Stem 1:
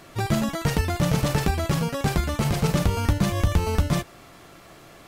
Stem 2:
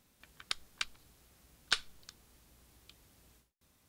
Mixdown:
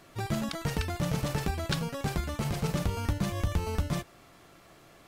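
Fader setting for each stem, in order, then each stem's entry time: -8.0, -4.0 dB; 0.00, 0.00 s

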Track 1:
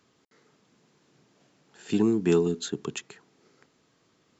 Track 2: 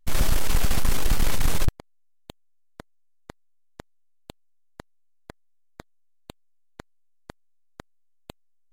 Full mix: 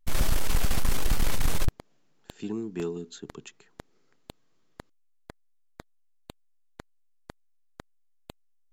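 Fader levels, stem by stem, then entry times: -10.0, -3.0 dB; 0.50, 0.00 s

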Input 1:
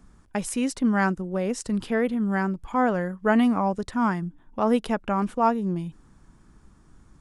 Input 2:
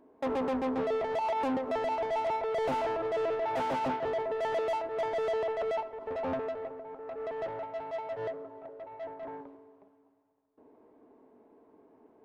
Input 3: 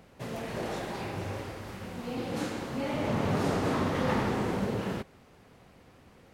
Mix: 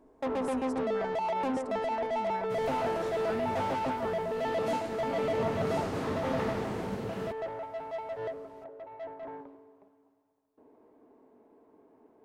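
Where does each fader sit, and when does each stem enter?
-19.0, -0.5, -5.5 dB; 0.00, 0.00, 2.30 s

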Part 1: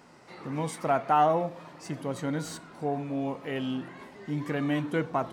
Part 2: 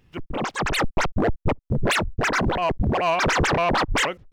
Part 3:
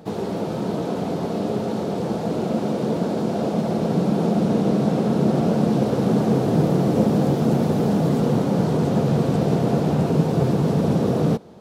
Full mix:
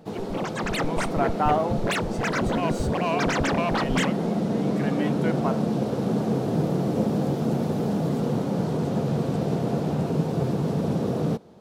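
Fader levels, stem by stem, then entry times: -0.5, -5.5, -5.5 dB; 0.30, 0.00, 0.00 s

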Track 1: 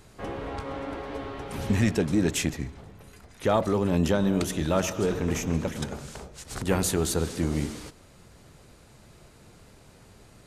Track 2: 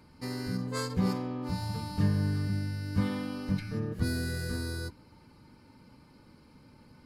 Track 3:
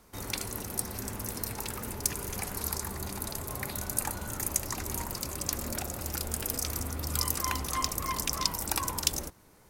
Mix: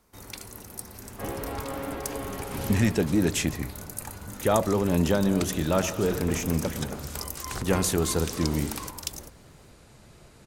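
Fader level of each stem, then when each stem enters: +0.5, -16.0, -6.0 dB; 1.00, 1.30, 0.00 s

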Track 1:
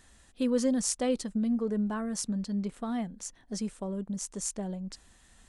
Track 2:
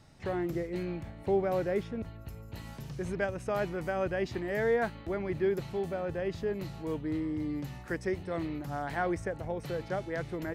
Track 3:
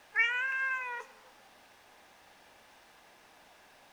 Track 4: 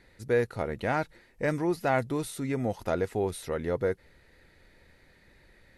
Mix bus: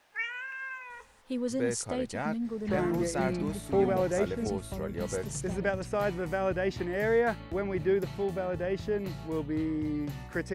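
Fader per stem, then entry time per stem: -5.0, +2.0, -6.5, -6.5 dB; 0.90, 2.45, 0.00, 1.30 s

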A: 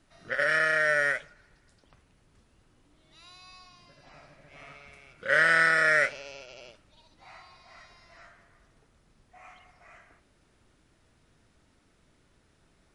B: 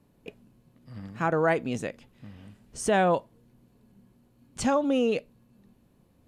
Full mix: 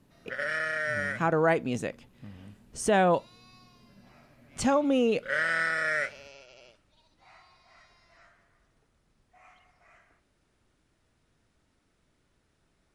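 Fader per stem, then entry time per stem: -6.0, 0.0 dB; 0.00, 0.00 s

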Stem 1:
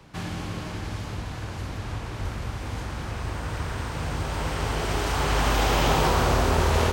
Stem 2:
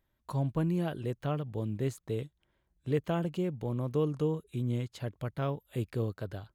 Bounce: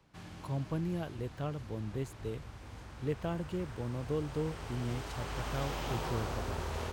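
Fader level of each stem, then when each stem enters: -16.0, -5.0 dB; 0.00, 0.15 s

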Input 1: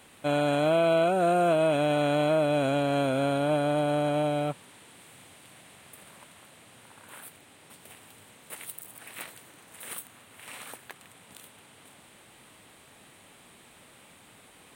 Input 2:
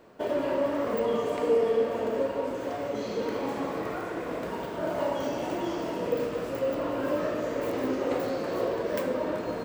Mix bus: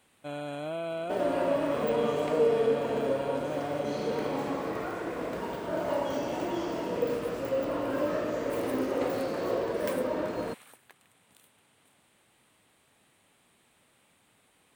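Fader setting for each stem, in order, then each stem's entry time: -11.5, -1.0 dB; 0.00, 0.90 s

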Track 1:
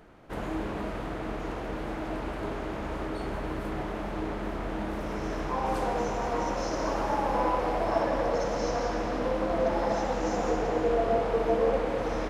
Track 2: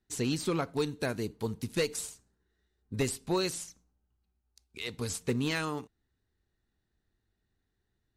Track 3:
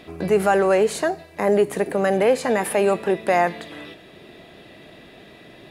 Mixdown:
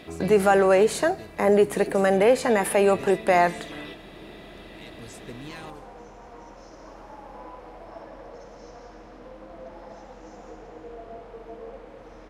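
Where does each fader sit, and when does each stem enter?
-15.5, -10.5, -0.5 dB; 0.00, 0.00, 0.00 s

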